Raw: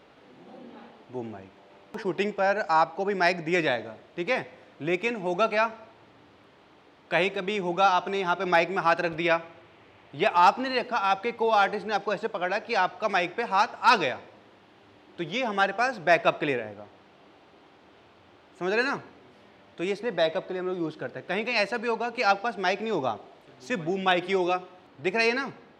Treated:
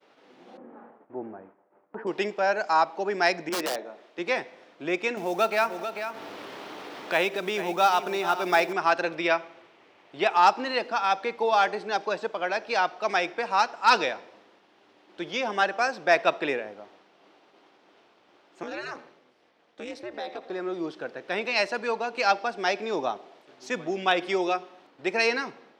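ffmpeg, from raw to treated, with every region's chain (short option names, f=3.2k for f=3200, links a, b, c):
-filter_complex "[0:a]asettb=1/sr,asplit=3[a][b][c];[a]atrim=end=0.574[d];[b]atrim=start=0.57:end=2.07,asetpts=PTS-STARTPTS,afade=t=in:d=0.004:c=qsin,afade=t=out:st=1.496:d=0.004:c=qsin,lowpass=f=1.6k:w=0.5412,lowpass=f=1.6k:w=1.3066,lowshelf=f=160:g=3.5,agate=range=-33dB:threshold=-50dB:ratio=3:release=100:detection=peak[e];[c]atrim=start=2.066[f];[d][e]acrossfade=d=0.004:c1=hsin:c2=qsin[g];[g][f]acrossfade=d=0.004:c1=qsin:c2=hsin,asettb=1/sr,asplit=3[h][i][j];[h]atrim=end=3.494[k];[i]atrim=start=3.49:end=4.19,asetpts=PTS-STARTPTS,afade=t=in:d=0.004:c=qsin,afade=t=out:st=0.696:d=0.004:c=qsin,highpass=240,aeval=exprs='(mod(8.91*val(0)+1,2)-1)/8.91':c=same,adynamicequalizer=threshold=0.00708:dfrequency=1600:dqfactor=0.7:tfrequency=1600:tqfactor=0.7:attack=5:release=100:ratio=0.375:range=3.5:mode=cutabove:tftype=highshelf[l];[j]atrim=start=4.186[m];[k][l]acrossfade=d=0.004:c1=hsin:c2=qsin[n];[n][m]acrossfade=d=0.004:c1=qsin:c2=hsin,asettb=1/sr,asplit=3[o][p][q];[o]atrim=end=5.174[r];[p]atrim=start=5.17:end=8.73,asetpts=PTS-STARTPTS,afade=t=in:d=0.004:c=qsin,afade=t=out:st=3.556:d=0.004:c=qsin,aecho=1:1:443:0.237,atrim=end_sample=156996,acompressor=mode=upward:threshold=-24dB:ratio=2.5:attack=3.2:release=140:knee=2.83:detection=peak,acrusher=bits=6:mode=log:mix=0:aa=0.000001[s];[q]atrim=start=8.726[t];[r][s]acrossfade=d=0.004:c1=hsin:c2=qsin[u];[u][t]acrossfade=d=0.004:c1=qsin:c2=hsin,asettb=1/sr,asplit=3[v][w][x];[v]atrim=end=18.634[y];[w]atrim=start=18.63:end=20.5,asetpts=PTS-STARTPTS,afade=t=in:d=0.004:c=qsin,afade=t=out:st=1.866:d=0.004:c=qsin,aeval=exprs='val(0)*sin(2*PI*120*n/s)':c=same,acompressor=threshold=-32dB:ratio=3:attack=3.2:release=140:knee=1:detection=peak,bandreject=f=960:w=28[z];[x]atrim=start=20.496[aa];[y][z]acrossfade=d=0.004:c1=hsin:c2=qsin[ab];[ab][aa]acrossfade=d=0.004:c1=qsin:c2=hsin,highpass=260,agate=range=-33dB:threshold=-52dB:ratio=3:detection=peak,equalizer=f=5.5k:w=2.8:g=4.5"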